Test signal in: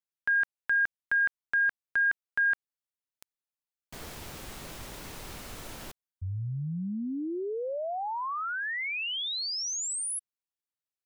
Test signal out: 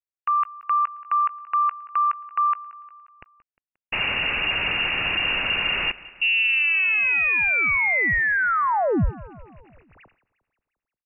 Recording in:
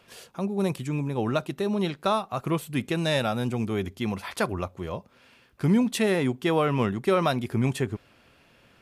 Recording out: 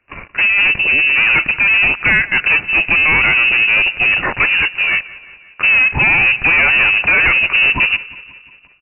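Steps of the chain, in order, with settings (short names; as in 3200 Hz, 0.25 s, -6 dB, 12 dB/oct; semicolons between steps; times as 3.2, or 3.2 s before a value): air absorption 120 m; sample leveller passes 5; feedback echo 0.177 s, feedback 59%, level -19.5 dB; inverted band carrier 2800 Hz; low shelf 120 Hz +6 dB; gain +3.5 dB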